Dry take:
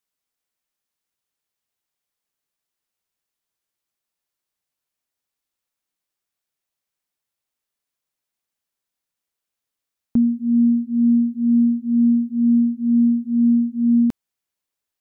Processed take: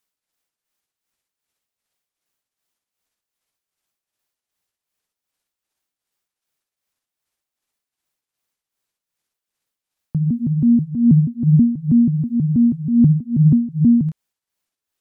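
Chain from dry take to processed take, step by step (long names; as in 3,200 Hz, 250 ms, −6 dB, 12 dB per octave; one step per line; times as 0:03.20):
pitch shifter gated in a rhythm −7 semitones, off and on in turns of 161 ms
amplitude tremolo 2.6 Hz, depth 61%
level +5.5 dB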